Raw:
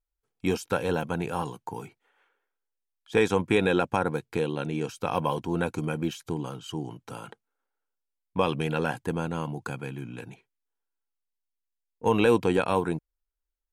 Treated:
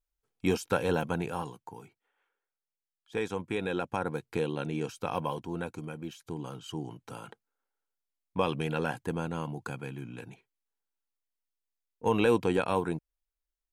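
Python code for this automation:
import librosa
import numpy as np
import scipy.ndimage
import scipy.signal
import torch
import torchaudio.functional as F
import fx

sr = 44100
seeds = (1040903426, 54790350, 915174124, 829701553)

y = fx.gain(x, sr, db=fx.line((1.1, -1.0), (1.78, -10.0), (3.55, -10.0), (4.36, -3.0), (4.88, -3.0), (6.03, -11.0), (6.57, -3.5)))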